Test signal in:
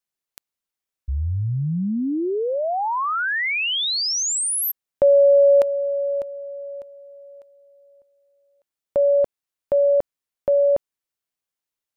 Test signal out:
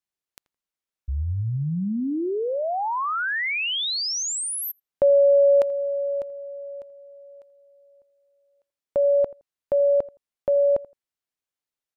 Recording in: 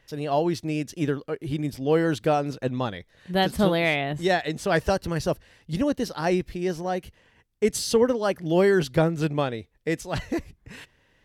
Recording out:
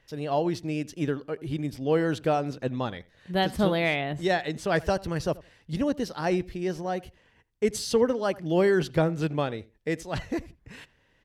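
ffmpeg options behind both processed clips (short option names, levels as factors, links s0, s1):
-filter_complex "[0:a]highshelf=f=9300:g=-6,asplit=2[s0][s1];[s1]adelay=83,lowpass=f=2000:p=1,volume=0.0944,asplit=2[s2][s3];[s3]adelay=83,lowpass=f=2000:p=1,volume=0.19[s4];[s2][s4]amix=inputs=2:normalize=0[s5];[s0][s5]amix=inputs=2:normalize=0,volume=0.75"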